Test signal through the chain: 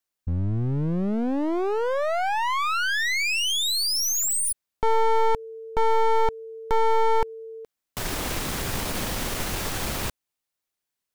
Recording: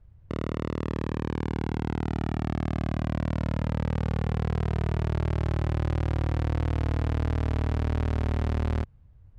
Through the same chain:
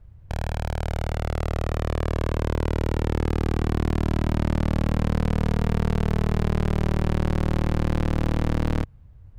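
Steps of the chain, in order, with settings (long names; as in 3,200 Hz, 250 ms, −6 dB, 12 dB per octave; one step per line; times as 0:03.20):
wavefolder on the positive side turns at −30 dBFS
level +6 dB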